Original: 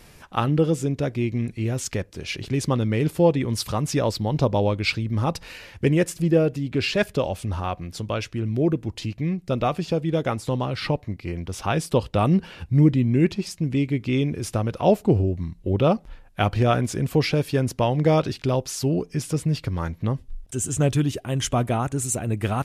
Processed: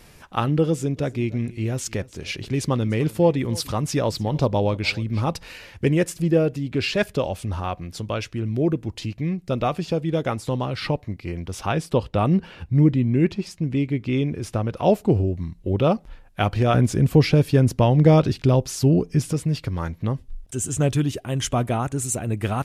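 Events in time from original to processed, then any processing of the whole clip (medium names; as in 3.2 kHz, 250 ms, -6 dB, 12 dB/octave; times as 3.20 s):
0.67–5.34 s: delay 297 ms -21 dB
11.72–14.77 s: treble shelf 4.7 kHz -7.5 dB
16.74–19.33 s: bass shelf 340 Hz +8 dB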